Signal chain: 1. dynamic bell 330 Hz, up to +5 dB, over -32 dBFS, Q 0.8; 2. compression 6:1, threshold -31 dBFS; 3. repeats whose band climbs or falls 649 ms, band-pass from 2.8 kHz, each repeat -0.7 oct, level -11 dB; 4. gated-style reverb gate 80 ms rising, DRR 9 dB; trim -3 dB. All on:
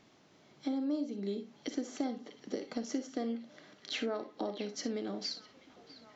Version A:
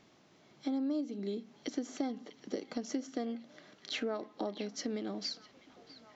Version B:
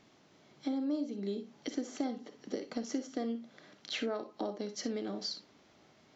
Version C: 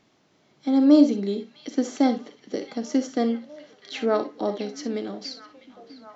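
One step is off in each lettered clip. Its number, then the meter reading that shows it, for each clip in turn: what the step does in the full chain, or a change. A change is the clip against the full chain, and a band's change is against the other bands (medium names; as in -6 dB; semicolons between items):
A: 4, echo-to-direct -7.0 dB to -12.5 dB; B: 3, echo-to-direct -7.0 dB to -9.0 dB; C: 2, mean gain reduction 9.0 dB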